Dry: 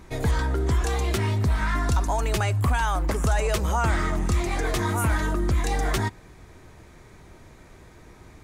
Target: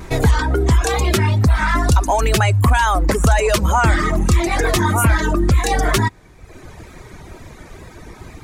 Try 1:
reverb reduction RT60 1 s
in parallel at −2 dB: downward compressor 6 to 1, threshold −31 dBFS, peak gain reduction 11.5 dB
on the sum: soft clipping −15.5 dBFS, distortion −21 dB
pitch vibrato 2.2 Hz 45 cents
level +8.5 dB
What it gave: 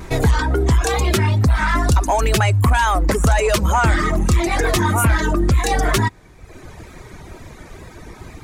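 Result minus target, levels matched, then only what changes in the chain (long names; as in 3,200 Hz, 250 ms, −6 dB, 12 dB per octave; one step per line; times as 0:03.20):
soft clipping: distortion +11 dB
change: soft clipping −9 dBFS, distortion −32 dB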